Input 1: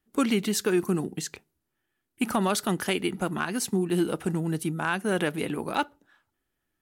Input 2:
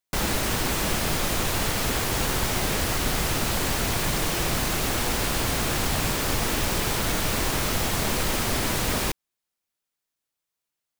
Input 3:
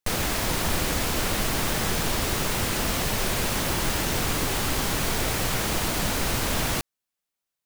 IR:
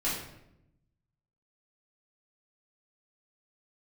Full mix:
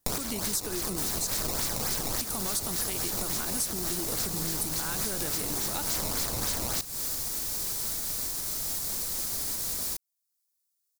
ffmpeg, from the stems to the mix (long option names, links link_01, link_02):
-filter_complex "[0:a]acompressor=threshold=-26dB:ratio=6,volume=-4dB,asplit=2[link_01][link_02];[1:a]alimiter=limit=-21dB:level=0:latency=1:release=495,adelay=850,volume=-10.5dB[link_03];[2:a]acrusher=samples=16:mix=1:aa=0.000001:lfo=1:lforange=25.6:lforate=3.5,volume=-0.5dB[link_04];[link_02]apad=whole_len=337400[link_05];[link_04][link_05]sidechaincompress=threshold=-46dB:ratio=4:attack=47:release=156[link_06];[link_01][link_03][link_06]amix=inputs=3:normalize=0,aexciter=amount=3.1:drive=8.9:freq=4100,acompressor=threshold=-27dB:ratio=6"